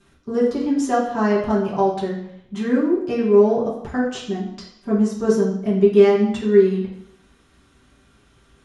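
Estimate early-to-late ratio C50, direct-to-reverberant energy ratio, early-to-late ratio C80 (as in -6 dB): 4.5 dB, -8.5 dB, 8.5 dB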